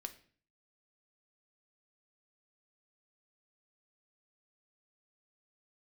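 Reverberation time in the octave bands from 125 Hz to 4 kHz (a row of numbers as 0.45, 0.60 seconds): 0.65, 0.60, 0.50, 0.45, 0.45, 0.40 seconds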